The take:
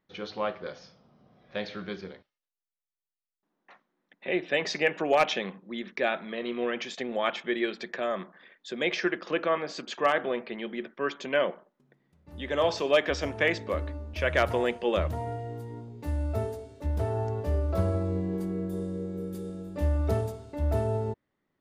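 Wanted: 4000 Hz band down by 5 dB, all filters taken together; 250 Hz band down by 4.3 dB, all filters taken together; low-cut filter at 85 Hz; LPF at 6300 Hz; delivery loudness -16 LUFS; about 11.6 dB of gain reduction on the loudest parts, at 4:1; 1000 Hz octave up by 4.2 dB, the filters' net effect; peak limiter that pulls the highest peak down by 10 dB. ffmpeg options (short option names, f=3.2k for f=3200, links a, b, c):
-af "highpass=85,lowpass=6.3k,equalizer=f=250:t=o:g=-7,equalizer=f=1k:t=o:g=6.5,equalizer=f=4k:t=o:g=-7,acompressor=threshold=-30dB:ratio=4,volume=22dB,alimiter=limit=-4.5dB:level=0:latency=1"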